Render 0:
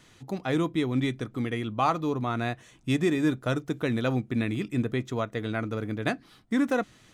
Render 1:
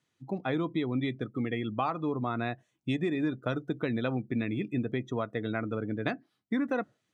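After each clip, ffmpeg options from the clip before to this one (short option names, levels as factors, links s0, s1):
-af "highpass=110,afftdn=nr=22:nf=-40,acompressor=threshold=0.0501:ratio=6"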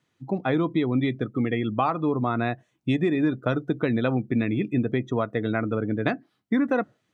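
-af "highshelf=f=3700:g=-7,volume=2.24"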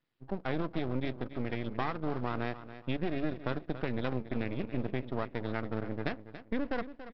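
-af "aecho=1:1:282|564|846:0.224|0.0672|0.0201,aresample=11025,aeval=exprs='max(val(0),0)':c=same,aresample=44100,volume=0.447"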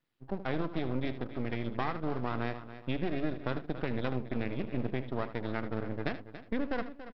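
-af "aecho=1:1:77:0.224"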